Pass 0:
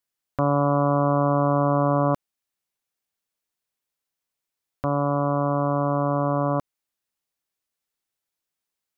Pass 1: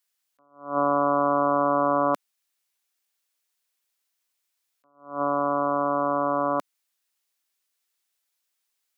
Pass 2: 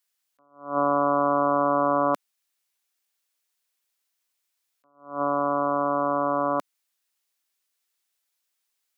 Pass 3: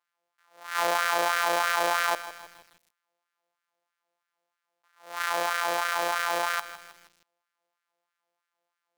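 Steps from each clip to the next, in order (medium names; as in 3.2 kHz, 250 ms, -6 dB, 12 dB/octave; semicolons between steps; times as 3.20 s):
high-pass 210 Hz 24 dB/octave; tilt shelf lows -5.5 dB; attacks held to a fixed rise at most 140 dB/s; trim +2 dB
no audible change
sorted samples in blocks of 256 samples; LFO high-pass sine 3.1 Hz 560–1500 Hz; bit-crushed delay 158 ms, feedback 55%, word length 6-bit, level -13.5 dB; trim -4.5 dB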